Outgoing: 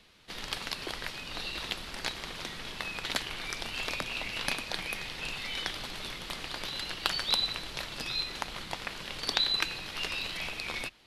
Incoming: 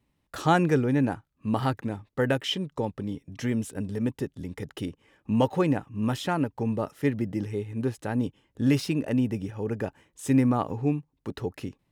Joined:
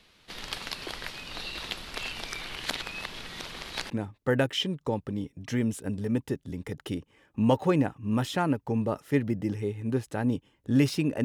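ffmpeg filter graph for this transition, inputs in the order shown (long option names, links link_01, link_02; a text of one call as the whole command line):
ffmpeg -i cue0.wav -i cue1.wav -filter_complex "[0:a]apad=whole_dur=11.24,atrim=end=11.24,asplit=2[link_01][link_02];[link_01]atrim=end=1.962[link_03];[link_02]atrim=start=1.958:end=3.902,asetpts=PTS-STARTPTS,areverse[link_04];[1:a]atrim=start=1.808:end=9.15[link_05];[link_03][link_04]acrossfade=duration=0.004:curve1=hsin:curve2=hsin[link_06];[link_06][link_05]acrossfade=duration=0.004:curve1=hsin:curve2=hsin" out.wav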